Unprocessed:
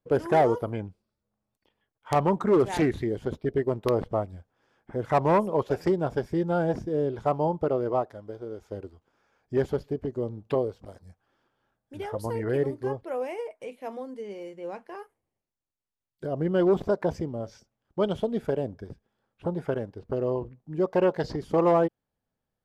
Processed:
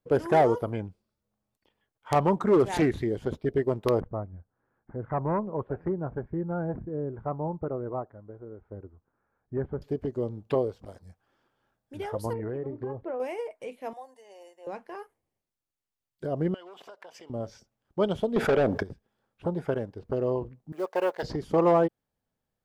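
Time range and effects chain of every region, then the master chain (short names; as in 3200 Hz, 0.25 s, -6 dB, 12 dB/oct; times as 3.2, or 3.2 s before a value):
4–9.82 LPF 1500 Hz 24 dB/oct + bell 640 Hz -8 dB 2.8 oct
12.33–13.2 LPF 2500 Hz + tilt shelf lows +4.5 dB, about 1500 Hz + compressor 16:1, threshold -29 dBFS
13.93–14.67 HPF 520 Hz 24 dB/oct + band shelf 2300 Hz -8 dB 2.7 oct + comb 1.1 ms, depth 75%
16.54–17.3 HPF 870 Hz + bell 2900 Hz +10.5 dB 0.33 oct + compressor 10:1, threshold -43 dBFS
18.36–18.83 high shelf 2700 Hz -9.5 dB + overdrive pedal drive 23 dB, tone 7500 Hz, clips at -14.5 dBFS + fast leveller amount 50%
20.72–21.23 G.711 law mismatch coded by A + HPF 520 Hz
whole clip: dry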